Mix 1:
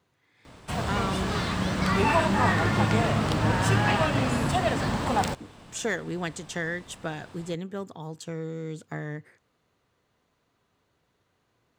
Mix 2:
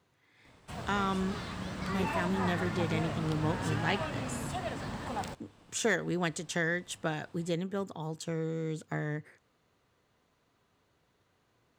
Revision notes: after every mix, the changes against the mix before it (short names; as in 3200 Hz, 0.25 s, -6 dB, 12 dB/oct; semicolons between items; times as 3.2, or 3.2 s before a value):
background -11.5 dB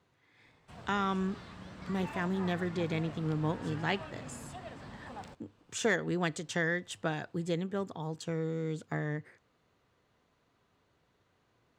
background -9.0 dB; master: add high shelf 8900 Hz -10 dB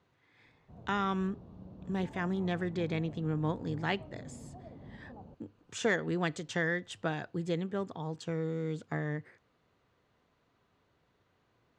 speech: add air absorption 53 m; background: add Gaussian blur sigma 12 samples